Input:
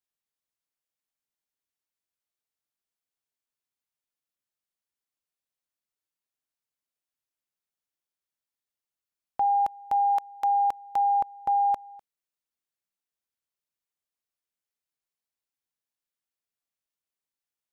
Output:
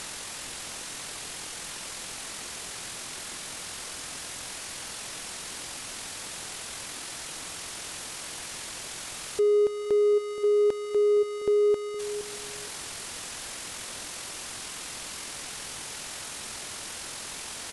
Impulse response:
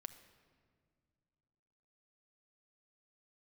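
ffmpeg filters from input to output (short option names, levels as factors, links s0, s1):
-filter_complex "[0:a]aeval=exprs='val(0)+0.5*0.02*sgn(val(0))':c=same,acontrast=46,asplit=2[s0][s1];[s1]adelay=466,lowpass=f=900:p=1,volume=0.251,asplit=2[s2][s3];[s3]adelay=466,lowpass=f=900:p=1,volume=0.21,asplit=2[s4][s5];[s5]adelay=466,lowpass=f=900:p=1,volume=0.21[s6];[s2][s4][s6]amix=inputs=3:normalize=0[s7];[s0][s7]amix=inputs=2:normalize=0,asetrate=22696,aresample=44100,atempo=1.94306,asplit=2[s8][s9];[s9]adelay=150,highpass=300,lowpass=3400,asoftclip=type=hard:threshold=0.0794,volume=0.126[s10];[s8][s10]amix=inputs=2:normalize=0,asplit=2[s11][s12];[s12]acompressor=threshold=0.0224:ratio=6,volume=1[s13];[s11][s13]amix=inputs=2:normalize=0,volume=0.473"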